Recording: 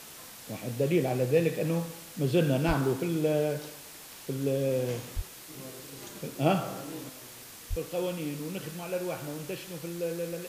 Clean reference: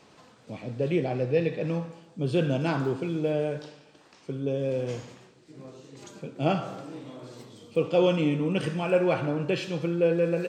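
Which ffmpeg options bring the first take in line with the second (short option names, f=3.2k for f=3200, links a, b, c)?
-filter_complex "[0:a]asplit=3[a][b][c];[a]afade=t=out:st=2.67:d=0.02[d];[b]highpass=f=140:w=0.5412,highpass=f=140:w=1.3066,afade=t=in:st=2.67:d=0.02,afade=t=out:st=2.79:d=0.02[e];[c]afade=t=in:st=2.79:d=0.02[f];[d][e][f]amix=inputs=3:normalize=0,asplit=3[g][h][i];[g]afade=t=out:st=5.15:d=0.02[j];[h]highpass=f=140:w=0.5412,highpass=f=140:w=1.3066,afade=t=in:st=5.15:d=0.02,afade=t=out:st=5.27:d=0.02[k];[i]afade=t=in:st=5.27:d=0.02[l];[j][k][l]amix=inputs=3:normalize=0,asplit=3[m][n][o];[m]afade=t=out:st=7.69:d=0.02[p];[n]highpass=f=140:w=0.5412,highpass=f=140:w=1.3066,afade=t=in:st=7.69:d=0.02,afade=t=out:st=7.81:d=0.02[q];[o]afade=t=in:st=7.81:d=0.02[r];[p][q][r]amix=inputs=3:normalize=0,afwtdn=0.005,asetnsamples=n=441:p=0,asendcmd='7.09 volume volume 10dB',volume=0dB"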